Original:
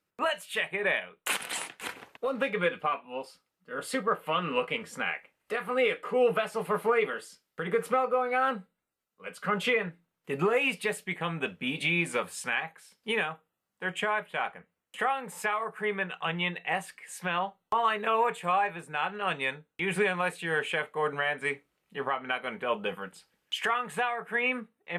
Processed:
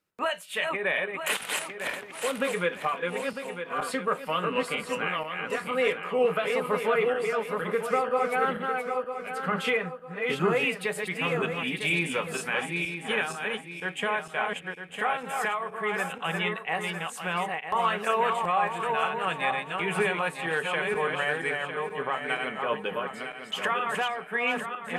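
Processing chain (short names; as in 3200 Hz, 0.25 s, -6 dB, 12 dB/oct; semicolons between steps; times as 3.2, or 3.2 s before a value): regenerating reverse delay 0.476 s, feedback 55%, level -3.5 dB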